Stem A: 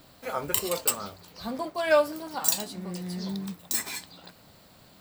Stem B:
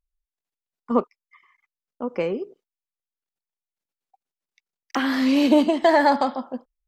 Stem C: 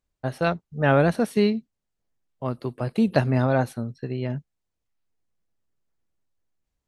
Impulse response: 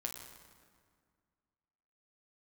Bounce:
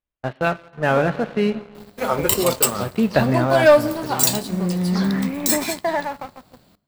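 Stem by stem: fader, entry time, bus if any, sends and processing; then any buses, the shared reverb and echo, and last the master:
-1.0 dB, 1.75 s, send -12 dB, low shelf 500 Hz +11.5 dB
-15.0 dB, 0.00 s, no send, elliptic low-pass 2300 Hz; AGC gain up to 10 dB; random-step tremolo, depth 55%
-3.0 dB, 0.00 s, send -6.5 dB, steep low-pass 3600 Hz; auto duck -7 dB, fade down 1.00 s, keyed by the second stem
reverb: on, RT60 1.9 s, pre-delay 8 ms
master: low shelf 440 Hz -6 dB; sample leveller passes 2

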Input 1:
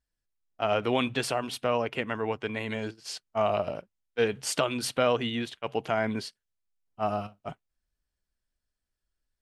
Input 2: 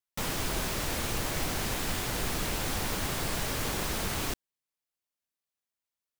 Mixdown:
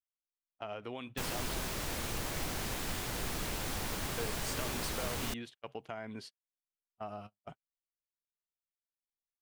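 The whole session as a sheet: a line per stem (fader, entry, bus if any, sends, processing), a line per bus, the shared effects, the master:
-9.5 dB, 0.00 s, muted 1.54–3.92, no send, compressor 5:1, threshold -29 dBFS, peak gain reduction 9 dB
-5.5 dB, 1.00 s, no send, dry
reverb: off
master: gate -48 dBFS, range -23 dB

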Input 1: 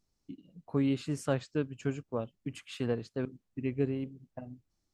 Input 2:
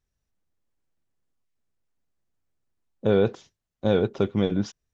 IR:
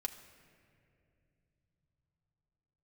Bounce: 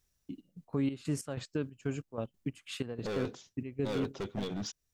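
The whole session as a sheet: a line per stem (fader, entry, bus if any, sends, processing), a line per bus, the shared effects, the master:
+2.0 dB, 0.00 s, no send, expander -56 dBFS; high shelf 8500 Hz +7 dB; step gate "x..xx..x.x" 186 bpm -12 dB
+2.5 dB, 0.00 s, no send, high shelf 3600 Hz +11.5 dB; hard clip -24.5 dBFS, distortion -4 dB; auto duck -11 dB, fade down 0.70 s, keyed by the first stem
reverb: off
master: limiter -22.5 dBFS, peak gain reduction 7 dB

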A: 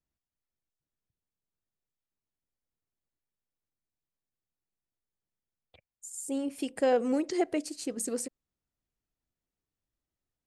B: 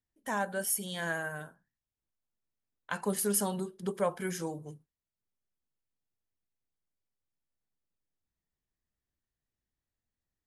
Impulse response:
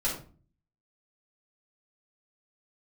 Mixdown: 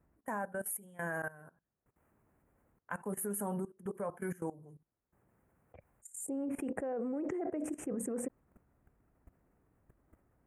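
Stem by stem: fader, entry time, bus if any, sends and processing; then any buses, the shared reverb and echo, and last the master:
+3.0 dB, 0.00 s, no send, LPF 1600 Hz 6 dB/oct; fast leveller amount 50%; auto duck -22 dB, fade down 0.20 s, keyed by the second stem
+0.5 dB, 0.00 s, no send, dry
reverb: off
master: HPF 42 Hz 12 dB/oct; level quantiser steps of 18 dB; Butterworth band-stop 4300 Hz, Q 0.55

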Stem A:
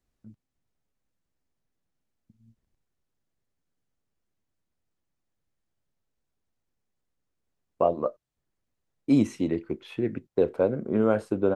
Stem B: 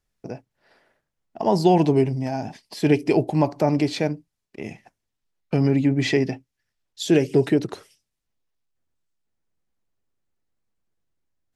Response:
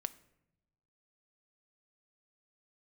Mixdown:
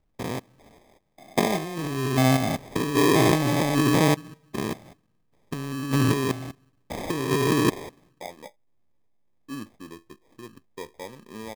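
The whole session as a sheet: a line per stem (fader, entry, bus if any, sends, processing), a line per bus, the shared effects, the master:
-15.5 dB, 0.40 s, no send, vibrato 1.3 Hz 22 cents
+2.5 dB, 0.00 s, send -9.5 dB, stepped spectrum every 0.2 s; negative-ratio compressor -26 dBFS, ratio -0.5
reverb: on, pre-delay 5 ms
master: treble ducked by the level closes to 1300 Hz, closed at -18.5 dBFS; high shelf 8900 Hz -8.5 dB; sample-and-hold 31×

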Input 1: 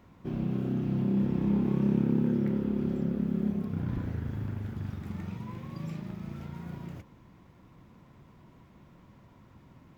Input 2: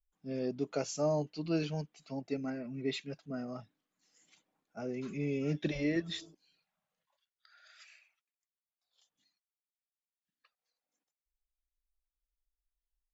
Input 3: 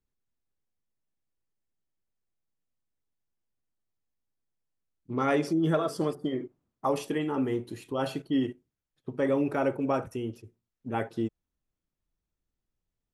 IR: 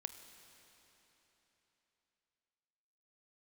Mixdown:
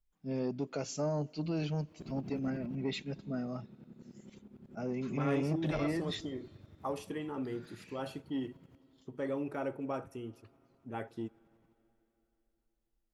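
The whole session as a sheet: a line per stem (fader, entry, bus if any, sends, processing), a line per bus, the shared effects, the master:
2.69 s -6 dB -> 2.97 s -15 dB, 1.75 s, no send, limiter -26 dBFS, peak gain reduction 10.5 dB; tremolo saw up 11 Hz, depth 100%
-0.5 dB, 0.00 s, send -13 dB, tone controls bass +5 dB, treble -3 dB; limiter -25.5 dBFS, peak gain reduction 7 dB
-11.0 dB, 0.00 s, send -10 dB, dry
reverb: on, RT60 3.7 s, pre-delay 24 ms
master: core saturation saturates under 390 Hz

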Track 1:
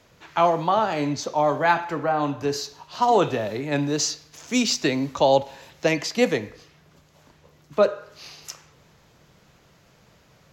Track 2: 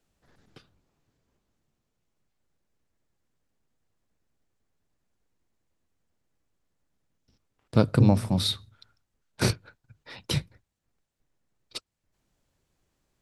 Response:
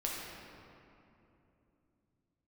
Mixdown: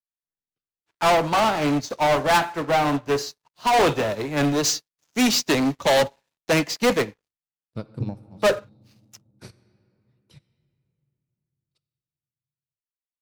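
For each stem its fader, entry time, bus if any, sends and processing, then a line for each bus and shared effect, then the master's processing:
-3.0 dB, 0.65 s, no send, sample leveller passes 5; upward expander 2.5:1, over -32 dBFS
-3.5 dB, 0.00 s, send -16 dB, upward expander 2.5:1, over -36 dBFS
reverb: on, RT60 3.0 s, pre-delay 6 ms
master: soft clip -13 dBFS, distortion -19 dB; upward expander 1.5:1, over -29 dBFS

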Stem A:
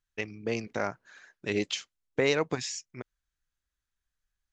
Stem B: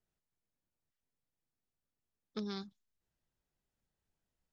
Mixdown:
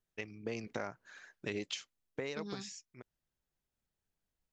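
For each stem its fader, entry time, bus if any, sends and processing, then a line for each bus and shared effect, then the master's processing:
1.75 s -7.5 dB -> 2.33 s -18 dB, 0.00 s, no send, AGC gain up to 6 dB
-2.5 dB, 0.00 s, no send, dry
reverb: off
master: compressor 6:1, threshold -35 dBFS, peak gain reduction 10 dB

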